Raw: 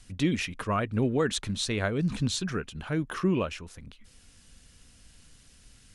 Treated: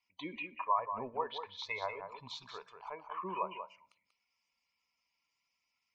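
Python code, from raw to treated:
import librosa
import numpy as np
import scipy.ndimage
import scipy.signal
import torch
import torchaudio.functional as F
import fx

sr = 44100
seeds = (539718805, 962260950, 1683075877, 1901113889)

p1 = fx.double_bandpass(x, sr, hz=1500.0, octaves=1.2)
p2 = fx.air_absorb(p1, sr, metres=51.0)
p3 = fx.quant_dither(p2, sr, seeds[0], bits=8, dither='none')
p4 = p2 + (p3 * librosa.db_to_amplitude(-7.0))
p5 = fx.env_lowpass_down(p4, sr, base_hz=1700.0, full_db=-35.0)
p6 = fx.spec_gate(p5, sr, threshold_db=-25, keep='strong')
p7 = fx.noise_reduce_blind(p6, sr, reduce_db=16)
p8 = p7 + 10.0 ** (-8.5 / 20.0) * np.pad(p7, (int(188 * sr / 1000.0), 0))[:len(p7)]
p9 = fx.rev_fdn(p8, sr, rt60_s=0.62, lf_ratio=1.4, hf_ratio=0.75, size_ms=10.0, drr_db=18.0)
y = p9 * librosa.db_to_amplitude(4.5)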